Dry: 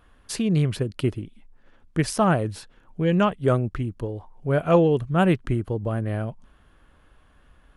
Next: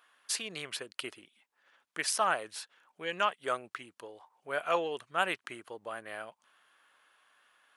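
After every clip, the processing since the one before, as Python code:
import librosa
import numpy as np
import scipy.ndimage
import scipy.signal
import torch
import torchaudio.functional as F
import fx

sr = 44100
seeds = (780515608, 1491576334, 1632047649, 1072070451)

y = scipy.signal.sosfilt(scipy.signal.bessel(2, 1300.0, 'highpass', norm='mag', fs=sr, output='sos'), x)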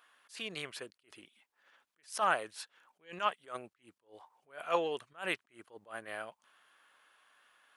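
y = fx.attack_slew(x, sr, db_per_s=220.0)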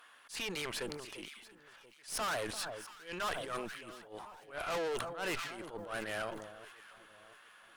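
y = fx.tube_stage(x, sr, drive_db=43.0, bias=0.6)
y = fx.echo_alternate(y, sr, ms=343, hz=1300.0, feedback_pct=64, wet_db=-13.5)
y = fx.sustainer(y, sr, db_per_s=48.0)
y = y * 10.0 ** (9.5 / 20.0)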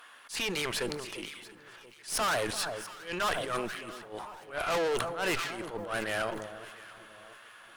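y = fx.rev_fdn(x, sr, rt60_s=3.1, lf_ratio=1.0, hf_ratio=0.45, size_ms=49.0, drr_db=16.5)
y = y * 10.0 ** (6.5 / 20.0)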